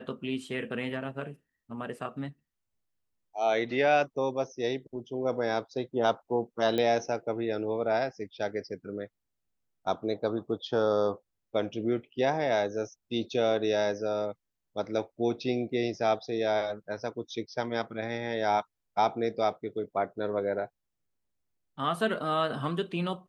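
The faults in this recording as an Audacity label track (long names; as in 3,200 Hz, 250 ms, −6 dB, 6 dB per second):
6.780000	6.780000	click −17 dBFS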